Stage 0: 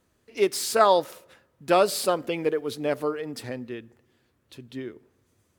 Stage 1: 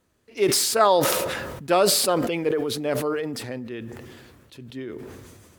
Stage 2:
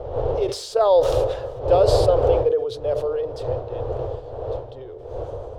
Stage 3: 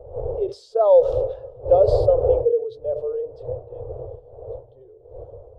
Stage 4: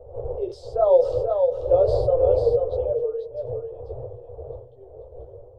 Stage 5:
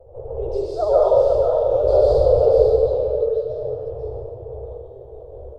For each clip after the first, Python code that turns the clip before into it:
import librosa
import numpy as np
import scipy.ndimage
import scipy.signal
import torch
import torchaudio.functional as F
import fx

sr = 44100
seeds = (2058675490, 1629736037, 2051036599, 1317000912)

y1 = fx.sustainer(x, sr, db_per_s=31.0)
y2 = fx.dmg_wind(y1, sr, seeds[0], corner_hz=460.0, level_db=-25.0)
y2 = fx.curve_eq(y2, sr, hz=(120.0, 180.0, 290.0, 490.0, 2100.0, 3300.0, 5900.0, 14000.0), db=(0, -26, -17, 7, -18, -6, -11, -26))
y3 = fx.spectral_expand(y2, sr, expansion=1.5)
y4 = fx.chorus_voices(y3, sr, voices=4, hz=0.75, base_ms=14, depth_ms=3.9, mix_pct=40)
y4 = y4 + 10.0 ** (-5.0 / 20.0) * np.pad(y4, (int(489 * sr / 1000.0), 0))[:len(y4)]
y5 = fx.vibrato(y4, sr, rate_hz=14.0, depth_cents=84.0)
y5 = fx.rev_plate(y5, sr, seeds[1], rt60_s=1.3, hf_ratio=1.0, predelay_ms=115, drr_db=-7.0)
y5 = y5 * librosa.db_to_amplitude(-3.0)